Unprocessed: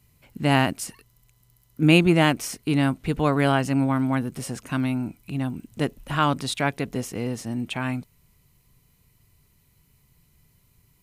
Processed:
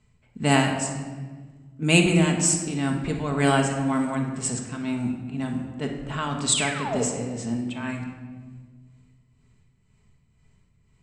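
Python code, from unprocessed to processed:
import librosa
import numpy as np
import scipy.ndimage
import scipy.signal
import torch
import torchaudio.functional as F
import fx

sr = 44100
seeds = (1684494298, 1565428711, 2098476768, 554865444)

y = fx.lowpass_res(x, sr, hz=7800.0, q=15.0)
y = fx.spec_paint(y, sr, seeds[0], shape='fall', start_s=6.52, length_s=0.52, low_hz=410.0, high_hz=3700.0, level_db=-27.0)
y = y * (1.0 - 0.65 / 2.0 + 0.65 / 2.0 * np.cos(2.0 * np.pi * 2.0 * (np.arange(len(y)) / sr)))
y = fx.env_lowpass(y, sr, base_hz=2700.0, full_db=-16.0)
y = fx.room_shoebox(y, sr, seeds[1], volume_m3=1500.0, walls='mixed', distance_m=1.5)
y = y * 10.0 ** (-1.0 / 20.0)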